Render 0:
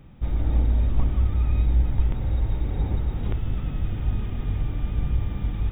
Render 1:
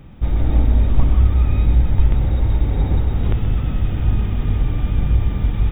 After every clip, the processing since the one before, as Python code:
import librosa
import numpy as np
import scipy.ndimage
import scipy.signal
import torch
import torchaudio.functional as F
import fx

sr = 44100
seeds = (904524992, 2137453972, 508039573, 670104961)

y = x + 10.0 ** (-8.0 / 20.0) * np.pad(x, (int(127 * sr / 1000.0), 0))[:len(x)]
y = y * 10.0 ** (7.0 / 20.0)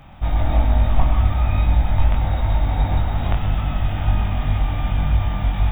y = fx.low_shelf_res(x, sr, hz=550.0, db=-7.0, q=3.0)
y = fx.doubler(y, sr, ms=21.0, db=-4.0)
y = y * 10.0 ** (3.0 / 20.0)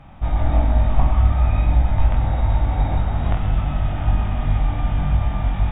y = fx.lowpass(x, sr, hz=2000.0, slope=6)
y = fx.room_flutter(y, sr, wall_m=8.2, rt60_s=0.3)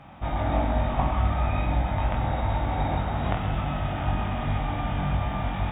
y = fx.highpass(x, sr, hz=190.0, slope=6)
y = y * 10.0 ** (1.0 / 20.0)